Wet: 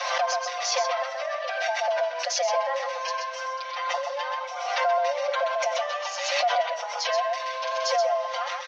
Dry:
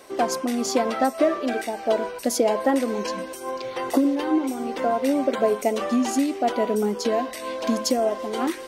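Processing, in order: steep high-pass 560 Hz 96 dB/oct; limiter -18.5 dBFS, peak gain reduction 8 dB; elliptic low-pass 6000 Hz, stop band 40 dB; comb 5.7 ms, depth 94%; on a send: echo 0.128 s -3.5 dB; on the sum: backwards sustainer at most 38 dB/s; gain -2.5 dB

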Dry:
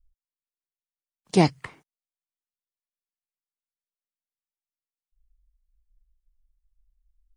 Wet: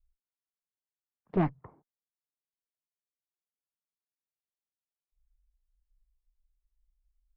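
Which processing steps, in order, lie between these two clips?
LPF 1700 Hz 24 dB/oct, from 1.49 s 1000 Hz; tube stage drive 15 dB, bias 0.55; gain -3 dB

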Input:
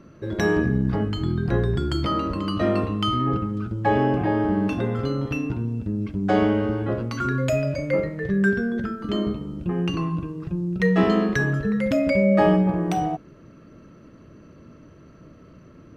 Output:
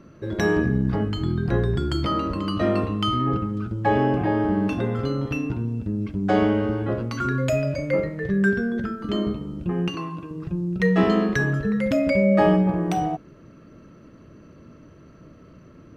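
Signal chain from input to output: 9.88–10.31 HPF 400 Hz 6 dB/oct

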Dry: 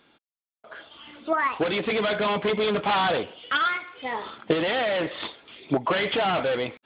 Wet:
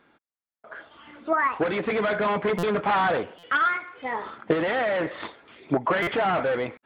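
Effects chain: resonant high shelf 2400 Hz -7.5 dB, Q 1.5; stuck buffer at 2.58/3.38/6.02, samples 256, times 8

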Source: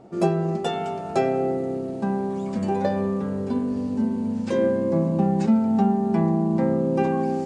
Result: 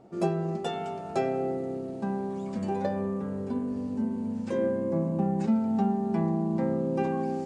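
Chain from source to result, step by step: 2.86–5.44 dynamic EQ 4200 Hz, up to -6 dB, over -50 dBFS, Q 1; gain -6 dB

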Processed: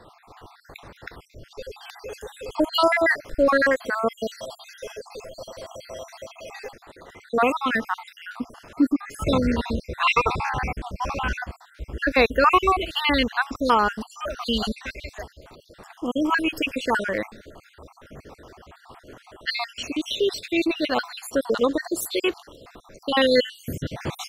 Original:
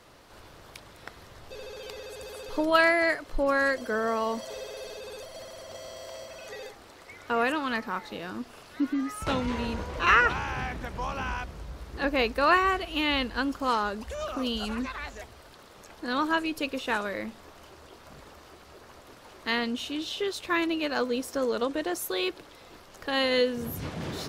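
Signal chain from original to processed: random spectral dropouts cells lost 58%; mismatched tape noise reduction decoder only; gain +8.5 dB

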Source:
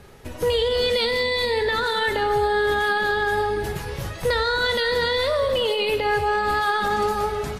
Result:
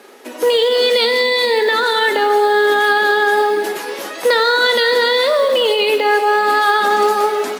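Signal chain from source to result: steep high-pass 240 Hz 48 dB/oct; in parallel at +1.5 dB: vocal rider within 4 dB 2 s; on the sum: short-mantissa float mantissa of 4-bit; gain +1 dB

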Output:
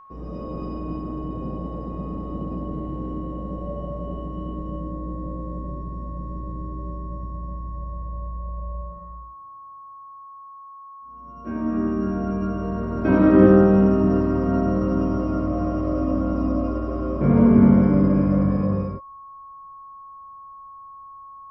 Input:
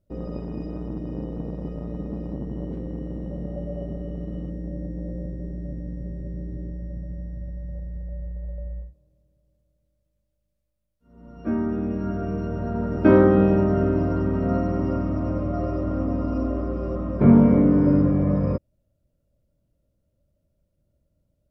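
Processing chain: whine 1100 Hz -37 dBFS; non-linear reverb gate 0.44 s flat, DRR -7 dB; gain -6 dB

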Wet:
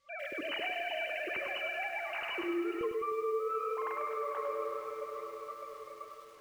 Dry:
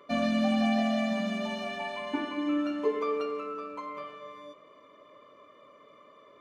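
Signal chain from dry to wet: sine-wave speech; gate -51 dBFS, range -15 dB; requantised 12-bit, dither triangular; air absorption 120 m; AGC gain up to 8.5 dB; bell 560 Hz -14.5 dB 3 oct, from 2.81 s -4.5 dB; diffused feedback echo 0.492 s, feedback 55%, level -15.5 dB; reverb RT60 1.7 s, pre-delay 50 ms, DRR 10 dB; compressor 16:1, threshold -36 dBFS, peak gain reduction 24.5 dB; lo-fi delay 0.102 s, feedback 55%, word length 10-bit, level -6 dB; gain +2.5 dB

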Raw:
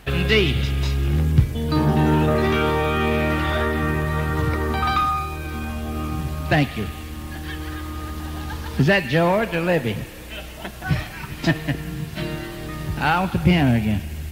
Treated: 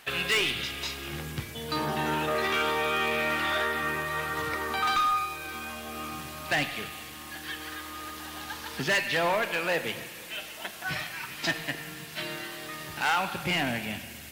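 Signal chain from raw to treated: HPF 1300 Hz 6 dB/oct; hard clip -21.5 dBFS, distortion -13 dB; on a send: reverb RT60 1.7 s, pre-delay 41 ms, DRR 13 dB

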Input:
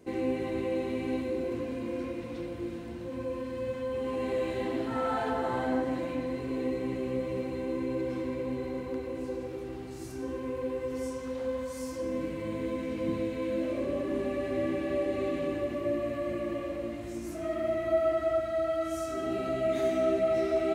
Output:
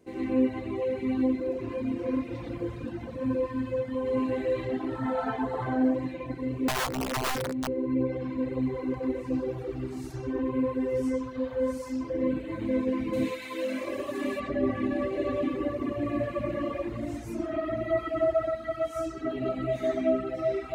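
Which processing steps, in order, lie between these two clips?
13.13–14.4 tilt +4 dB/oct; reverb RT60 0.65 s, pre-delay 77 ms, DRR -7 dB; 6.68–7.68 wrapped overs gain 15.5 dB; vocal rider within 4 dB 2 s; reverb removal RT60 1.4 s; gain -4.5 dB

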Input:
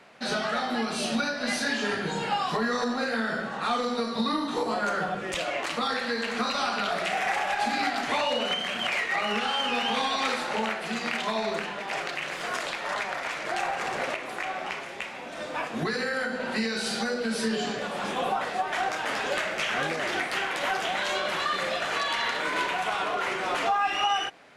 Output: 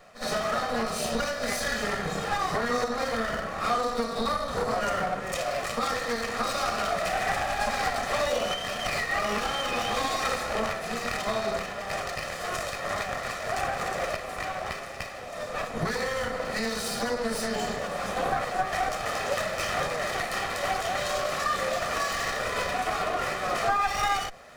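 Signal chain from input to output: minimum comb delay 1.6 ms; bell 3100 Hz -7 dB 1 oct; reverse; upward compressor, threshold -45 dBFS; reverse; pre-echo 61 ms -13.5 dB; gain +2.5 dB

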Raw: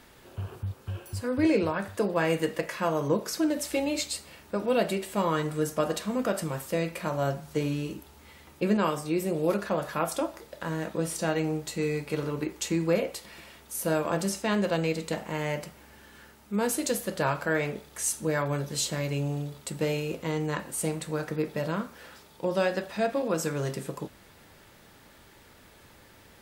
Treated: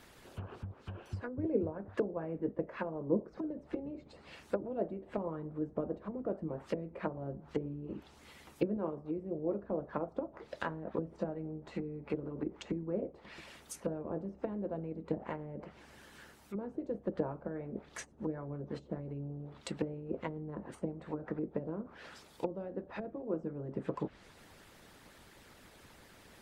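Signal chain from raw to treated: treble ducked by the level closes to 410 Hz, closed at -26.5 dBFS; harmonic-percussive split harmonic -13 dB; gain +1 dB

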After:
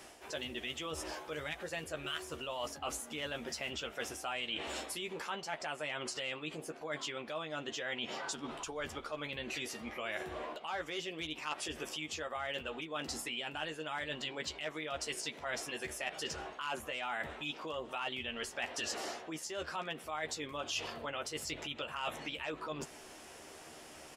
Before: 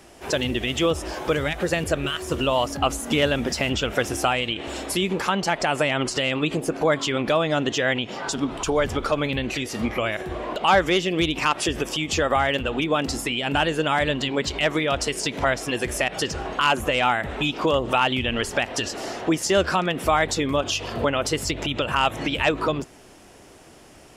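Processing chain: doubler 13 ms -6.5 dB; reverse; compressor 16:1, threshold -32 dBFS, peak gain reduction 21 dB; reverse; low shelf 310 Hz -11.5 dB; gain -2 dB

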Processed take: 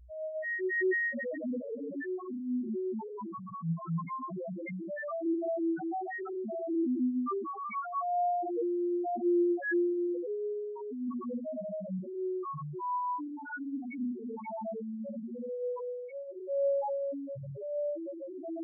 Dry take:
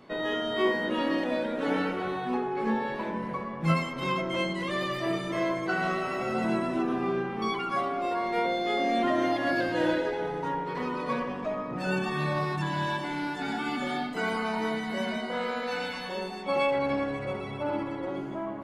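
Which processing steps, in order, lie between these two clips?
buzz 60 Hz, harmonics 5, -44 dBFS -4 dB/oct; non-linear reverb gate 0.27 s rising, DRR -4 dB; loudest bins only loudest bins 1; gain -2 dB

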